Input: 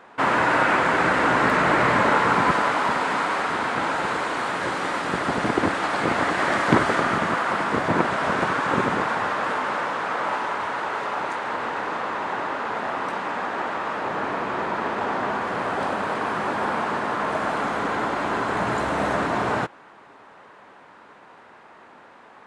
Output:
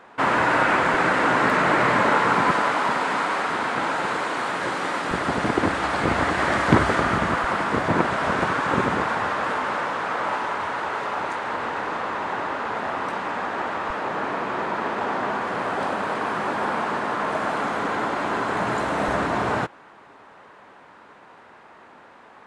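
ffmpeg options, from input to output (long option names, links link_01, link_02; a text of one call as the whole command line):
ffmpeg -i in.wav -af "asetnsamples=nb_out_samples=441:pad=0,asendcmd='0.94 equalizer g -5.5;5.11 equalizer g 4.5;5.71 equalizer g 14;7.44 equalizer g 6.5;13.9 equalizer g -4.5;19.08 equalizer g 3.5',equalizer=frequency=62:width_type=o:width=1.4:gain=2.5" out.wav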